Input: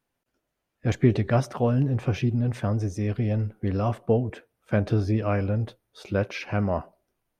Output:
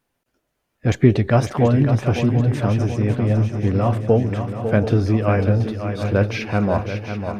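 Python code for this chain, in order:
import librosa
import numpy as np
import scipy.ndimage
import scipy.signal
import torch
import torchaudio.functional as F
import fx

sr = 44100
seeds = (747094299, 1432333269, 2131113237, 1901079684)

y = fx.high_shelf(x, sr, hz=5500.0, db=-10.5, at=(2.88, 3.89))
y = fx.echo_swing(y, sr, ms=733, ratio=3, feedback_pct=53, wet_db=-8.5)
y = y * 10.0 ** (6.0 / 20.0)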